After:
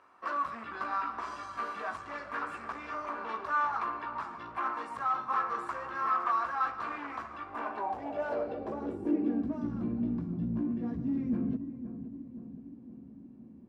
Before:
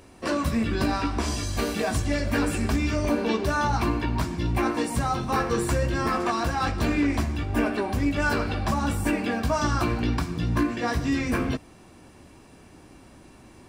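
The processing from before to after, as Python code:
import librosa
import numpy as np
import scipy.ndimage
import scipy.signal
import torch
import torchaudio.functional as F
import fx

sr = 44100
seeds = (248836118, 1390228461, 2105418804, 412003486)

y = fx.echo_filtered(x, sr, ms=521, feedback_pct=61, hz=980.0, wet_db=-11.5)
y = np.clip(10.0 ** (22.0 / 20.0) * y, -1.0, 1.0) / 10.0 ** (22.0 / 20.0)
y = fx.filter_sweep_bandpass(y, sr, from_hz=1200.0, to_hz=210.0, start_s=7.43, end_s=9.79, q=4.3)
y = F.gain(torch.from_numpy(y), 3.5).numpy()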